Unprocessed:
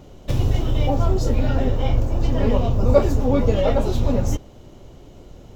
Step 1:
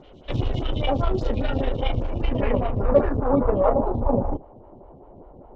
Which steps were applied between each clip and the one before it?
harmonic generator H 8 −25 dB, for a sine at −1.5 dBFS
low-pass filter sweep 3,300 Hz → 900 Hz, 0:01.96–0:03.89
phaser with staggered stages 5 Hz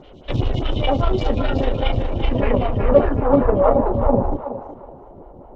feedback echo with a high-pass in the loop 372 ms, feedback 30%, high-pass 550 Hz, level −6.5 dB
level +4 dB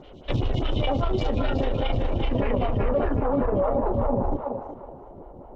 brickwall limiter −13 dBFS, peak gain reduction 11 dB
level −2 dB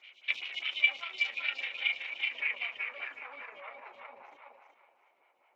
high-pass with resonance 2,300 Hz, resonance Q 9.5
level −5 dB

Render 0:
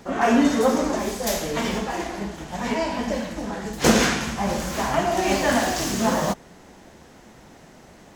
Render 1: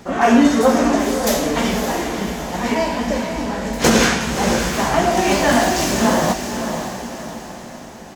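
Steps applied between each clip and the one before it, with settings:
double-tracking delay 17 ms −11 dB
feedback delay with all-pass diffusion 576 ms, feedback 47%, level −7.5 dB
boost into a limiter +5.5 dB
level −1 dB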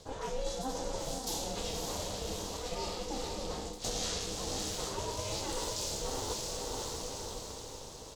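octave-band graphic EQ 1,000/2,000/4,000/8,000 Hz −5/−11/+10/+6 dB
reversed playback
downward compressor 5 to 1, threshold −24 dBFS, peak gain reduction 15 dB
reversed playback
ring modulation 260 Hz
level −7.5 dB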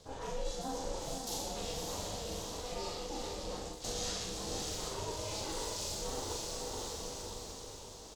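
loudspeakers that aren't time-aligned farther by 14 metres −3 dB, 43 metres −9 dB
level −4.5 dB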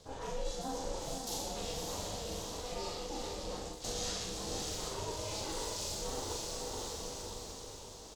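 no processing that can be heard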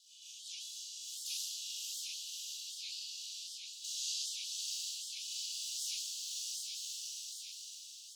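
Butterworth high-pass 2,700 Hz 96 dB per octave
rectangular room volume 2,200 cubic metres, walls mixed, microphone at 4.8 metres
wow of a warped record 78 rpm, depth 250 cents
level −4 dB

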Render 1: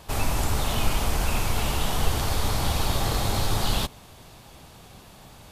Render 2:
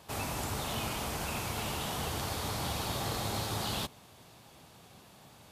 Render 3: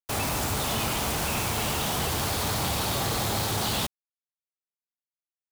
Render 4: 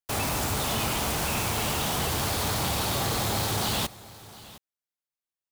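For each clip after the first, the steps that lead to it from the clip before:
high-pass filter 99 Hz 12 dB per octave; level −7 dB
log-companded quantiser 2 bits
single-tap delay 712 ms −19 dB

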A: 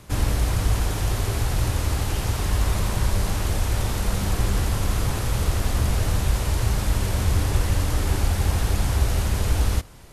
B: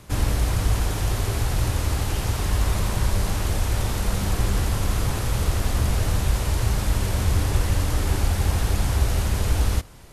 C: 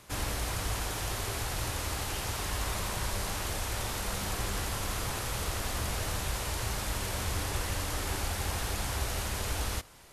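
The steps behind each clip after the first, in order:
no processing that can be heard
low-shelf EQ 360 Hz −11.5 dB; level −3 dB

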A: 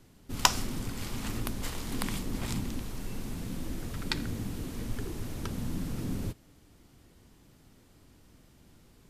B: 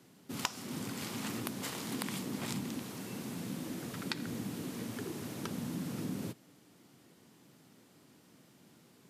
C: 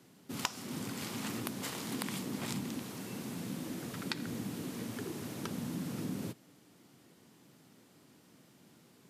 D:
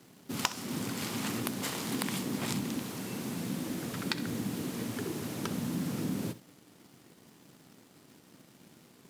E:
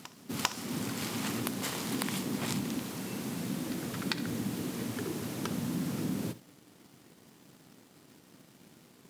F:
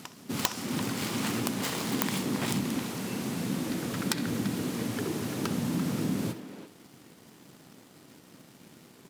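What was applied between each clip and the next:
high-pass filter 140 Hz 24 dB per octave; downward compressor 5 to 1, threshold −33 dBFS, peak gain reduction 15.5 dB
no processing that can be heard
flutter between parallel walls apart 11.1 metres, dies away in 0.23 s; in parallel at −10.5 dB: log-companded quantiser 4 bits; on the sum: level +2 dB
backwards echo 397 ms −18 dB
phase distortion by the signal itself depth 0.24 ms; far-end echo of a speakerphone 340 ms, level −9 dB; level +4 dB

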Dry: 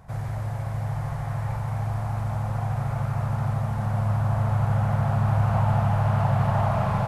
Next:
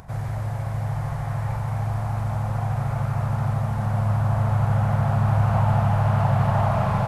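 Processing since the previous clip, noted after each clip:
upward compression, threshold −42 dBFS
level +2 dB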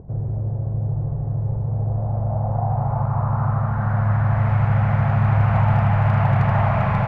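bass and treble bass +3 dB, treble +7 dB
low-pass filter sweep 410 Hz → 2,200 Hz, 0:01.58–0:04.51
hard clipping −9.5 dBFS, distortion −33 dB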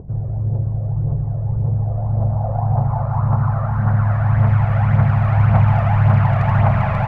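phase shifter 1.8 Hz, delay 1.8 ms, feedback 46%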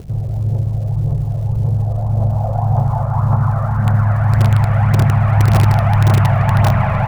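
in parallel at −9.5 dB: wrap-around overflow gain 6.5 dB
on the sum: surface crackle 320 per second −37 dBFS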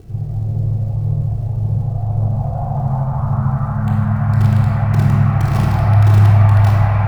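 rectangular room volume 2,000 cubic metres, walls mixed, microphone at 3.6 metres
level −10 dB

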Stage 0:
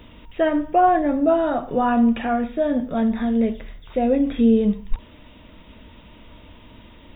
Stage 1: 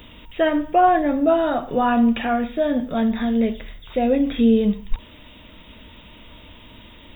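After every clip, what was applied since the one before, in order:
high-shelf EQ 3,000 Hz +12 dB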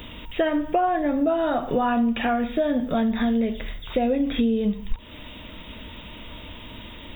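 downward compressor 6 to 1, threshold −24 dBFS, peak gain reduction 12.5 dB
level +4.5 dB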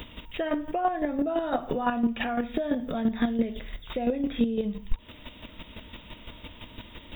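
square-wave tremolo 5.9 Hz, depth 60%, duty 20%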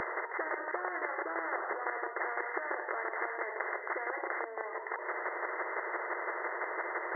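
linear-phase brick-wall band-pass 350–2,100 Hz
every bin compressed towards the loudest bin 10 to 1
level −4 dB

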